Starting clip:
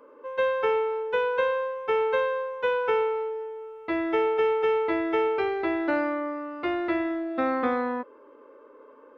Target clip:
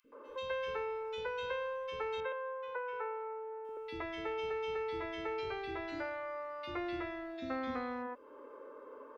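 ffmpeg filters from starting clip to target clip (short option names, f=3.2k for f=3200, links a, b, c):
-filter_complex "[0:a]asettb=1/sr,asplit=3[a][b][c];[a]atrim=end=2.204[d];[b]atrim=start=2.2:end=3.65,asetpts=PTS-STARTPTS,afade=t=in:d=0.004:c=qsin,afade=t=out:st=1.446:d=0.004:c=qsin,acrossover=split=440 2000:gain=0.0891 1 0.112[e][f][g];[e][f][g]amix=inputs=3:normalize=0[h];[c]atrim=start=3.646[i];[d][h]acrossfade=d=0.004:c1=hsin:c2=qsin[j];[j][i]acrossfade=d=0.004:c1=qsin:c2=hsin,acrossover=split=150|3000[k][l][m];[l]acompressor=threshold=-42dB:ratio=3[n];[k][n][m]amix=inputs=3:normalize=0,acrossover=split=300|2600[o][p][q];[o]adelay=40[r];[p]adelay=120[s];[r][s][q]amix=inputs=3:normalize=0,volume=1dB"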